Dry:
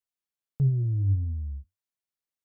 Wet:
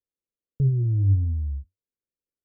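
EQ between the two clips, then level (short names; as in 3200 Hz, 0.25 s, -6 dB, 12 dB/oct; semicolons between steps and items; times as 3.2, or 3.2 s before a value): elliptic low-pass 530 Hz, stop band 40 dB; bell 160 Hz -6.5 dB 0.84 oct; +7.0 dB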